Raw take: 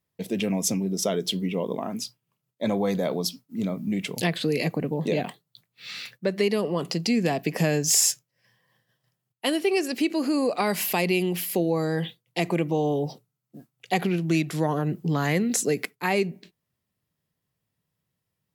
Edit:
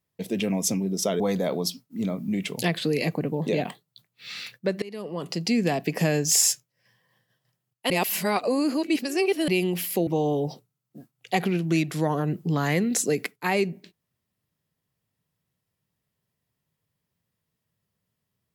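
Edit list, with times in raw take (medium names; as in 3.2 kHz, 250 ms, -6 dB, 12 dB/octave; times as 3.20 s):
1.20–2.79 s: delete
6.41–7.10 s: fade in linear, from -22.5 dB
9.49–11.07 s: reverse
11.66–12.66 s: delete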